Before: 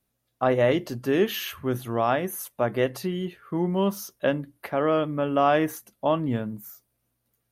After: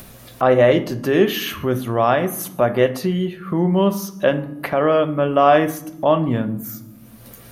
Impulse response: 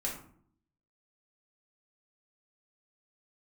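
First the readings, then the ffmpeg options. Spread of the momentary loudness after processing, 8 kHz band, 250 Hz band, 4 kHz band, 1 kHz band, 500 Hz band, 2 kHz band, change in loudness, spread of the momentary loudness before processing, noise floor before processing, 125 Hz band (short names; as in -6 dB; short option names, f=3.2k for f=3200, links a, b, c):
10 LU, +6.0 dB, +6.5 dB, +6.5 dB, +7.0 dB, +7.5 dB, +6.5 dB, +7.5 dB, 9 LU, -77 dBFS, +7.5 dB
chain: -filter_complex "[0:a]bandreject=f=415.4:t=h:w=4,bandreject=f=830.8:t=h:w=4,bandreject=f=1.2462k:t=h:w=4,bandreject=f=1.6616k:t=h:w=4,bandreject=f=2.077k:t=h:w=4,bandreject=f=2.4924k:t=h:w=4,bandreject=f=2.9078k:t=h:w=4,bandreject=f=3.3232k:t=h:w=4,bandreject=f=3.7386k:t=h:w=4,bandreject=f=4.154k:t=h:w=4,bandreject=f=4.5694k:t=h:w=4,bandreject=f=4.9848k:t=h:w=4,bandreject=f=5.4002k:t=h:w=4,bandreject=f=5.8156k:t=h:w=4,bandreject=f=6.231k:t=h:w=4,bandreject=f=6.6464k:t=h:w=4,bandreject=f=7.0618k:t=h:w=4,bandreject=f=7.4772k:t=h:w=4,bandreject=f=7.8926k:t=h:w=4,bandreject=f=8.308k:t=h:w=4,bandreject=f=8.7234k:t=h:w=4,bandreject=f=9.1388k:t=h:w=4,bandreject=f=9.5542k:t=h:w=4,bandreject=f=9.9696k:t=h:w=4,bandreject=f=10.385k:t=h:w=4,bandreject=f=10.8004k:t=h:w=4,bandreject=f=11.2158k:t=h:w=4,bandreject=f=11.6312k:t=h:w=4,bandreject=f=12.0466k:t=h:w=4,bandreject=f=12.462k:t=h:w=4,bandreject=f=12.8774k:t=h:w=4,bandreject=f=13.2928k:t=h:w=4,bandreject=f=13.7082k:t=h:w=4,bandreject=f=14.1236k:t=h:w=4,asplit=2[a][b];[1:a]atrim=start_sample=2205,asetrate=41454,aresample=44100,lowpass=5.4k[c];[b][c]afir=irnorm=-1:irlink=0,volume=-9.5dB[d];[a][d]amix=inputs=2:normalize=0,acompressor=mode=upward:threshold=-23dB:ratio=2.5,volume=4.5dB"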